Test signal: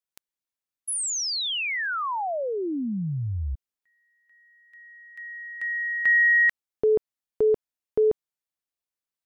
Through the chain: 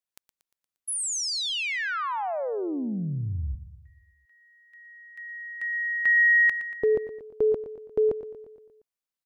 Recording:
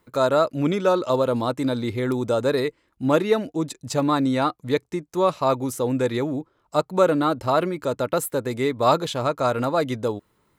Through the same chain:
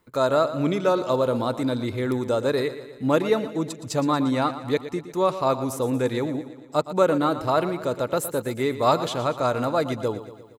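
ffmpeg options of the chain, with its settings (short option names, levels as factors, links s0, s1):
-af "aecho=1:1:117|234|351|468|585|702:0.224|0.128|0.0727|0.0415|0.0236|0.0135,volume=0.841"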